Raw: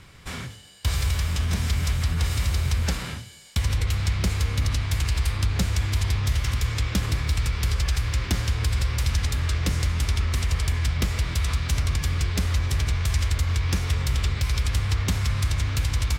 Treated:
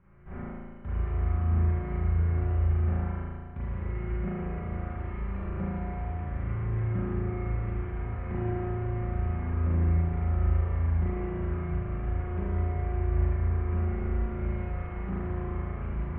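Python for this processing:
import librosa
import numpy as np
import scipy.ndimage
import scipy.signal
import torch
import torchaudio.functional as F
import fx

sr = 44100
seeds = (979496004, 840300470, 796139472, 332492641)

p1 = fx.comb_fb(x, sr, f0_hz=180.0, decay_s=1.5, harmonics='all', damping=0.0, mix_pct=90)
p2 = fx.schmitt(p1, sr, flips_db=-46.5)
p3 = p1 + F.gain(torch.from_numpy(p2), -11.5).numpy()
p4 = scipy.ndimage.gaussian_filter1d(p3, 5.6, mode='constant')
p5 = p4 + 0.33 * np.pad(p4, (int(5.1 * sr / 1000.0), 0))[:len(p4)]
p6 = fx.rev_spring(p5, sr, rt60_s=1.8, pass_ms=(36,), chirp_ms=75, drr_db=-8.5)
y = F.gain(torch.from_numpy(p6), 4.0).numpy()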